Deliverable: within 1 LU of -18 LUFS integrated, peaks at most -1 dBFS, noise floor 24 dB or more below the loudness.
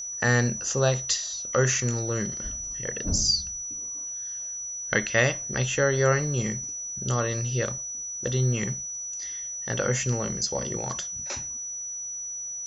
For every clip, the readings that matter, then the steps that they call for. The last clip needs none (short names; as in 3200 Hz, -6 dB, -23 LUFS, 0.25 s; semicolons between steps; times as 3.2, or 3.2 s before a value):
ticks 39/s; steady tone 5900 Hz; tone level -32 dBFS; loudness -26.5 LUFS; peak -7.0 dBFS; loudness target -18.0 LUFS
-> de-click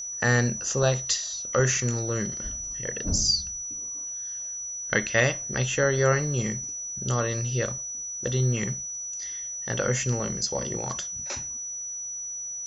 ticks 0.079/s; steady tone 5900 Hz; tone level -32 dBFS
-> notch 5900 Hz, Q 30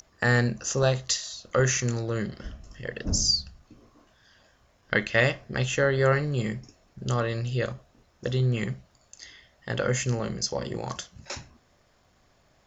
steady tone none; loudness -27.0 LUFS; peak -6.5 dBFS; loudness target -18.0 LUFS
-> gain +9 dB; limiter -1 dBFS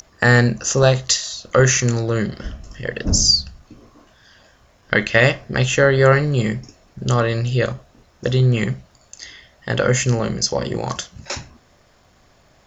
loudness -18.0 LUFS; peak -1.0 dBFS; noise floor -55 dBFS